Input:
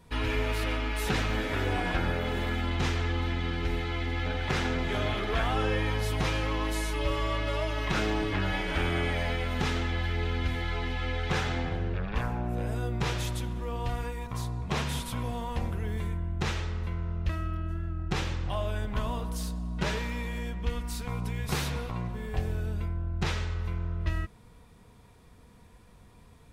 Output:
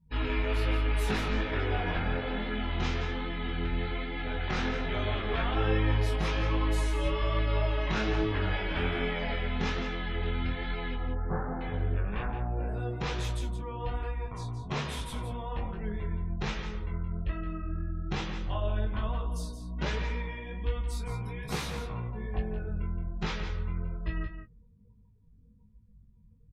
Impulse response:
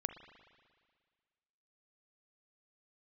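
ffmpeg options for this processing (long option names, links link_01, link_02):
-filter_complex "[0:a]asettb=1/sr,asplit=3[link_01][link_02][link_03];[link_01]atrim=end=10.944[link_04];[link_02]atrim=start=10.94:end=11.61,asetpts=PTS-STARTPTS,afade=type=in:duration=0.004:curve=qsin,afade=type=out:start_time=0.666:duration=0.004:curve=qsin,lowpass=frequency=1300:width=0.5412,lowpass=frequency=1300:width=1.3066[link_05];[link_03]atrim=start=11.606[link_06];[link_04][link_05]acrossfade=duration=0.004:curve1=hsin:curve2=qsin[link_07];[link_07][link_06]acrossfade=duration=0.004:curve1=qsin:curve2=hsin,afftdn=noise_reduction=31:noise_floor=-46,flanger=delay=18:depth=6.5:speed=1.2,asplit=2[link_08][link_09];[link_09]adelay=19,volume=-8.5dB[link_10];[link_08][link_10]amix=inputs=2:normalize=0,aecho=1:1:171:0.335"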